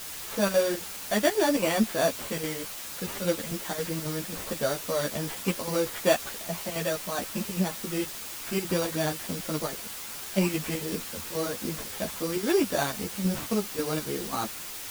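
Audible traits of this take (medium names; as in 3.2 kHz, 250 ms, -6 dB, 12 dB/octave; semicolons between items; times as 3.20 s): aliases and images of a low sample rate 5.2 kHz, jitter 0%; chopped level 3.7 Hz, depth 65%, duty 75%; a quantiser's noise floor 6-bit, dither triangular; a shimmering, thickened sound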